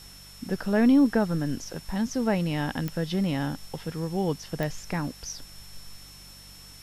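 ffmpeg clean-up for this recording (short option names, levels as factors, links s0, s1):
-af "adeclick=t=4,bandreject=f=48.2:t=h:w=4,bandreject=f=96.4:t=h:w=4,bandreject=f=144.6:t=h:w=4,bandreject=f=192.8:t=h:w=4,bandreject=f=5400:w=30,afwtdn=0.0032"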